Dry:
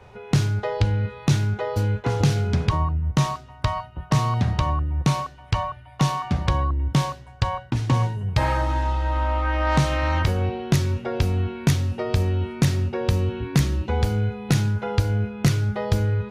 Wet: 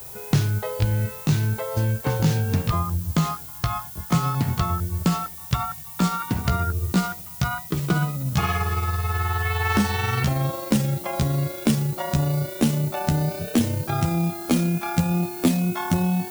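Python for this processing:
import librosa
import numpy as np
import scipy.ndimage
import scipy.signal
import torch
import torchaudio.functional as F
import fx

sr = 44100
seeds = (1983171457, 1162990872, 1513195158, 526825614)

y = fx.pitch_glide(x, sr, semitones=10.0, runs='starting unshifted')
y = fx.dmg_noise_colour(y, sr, seeds[0], colour='violet', level_db=-39.0)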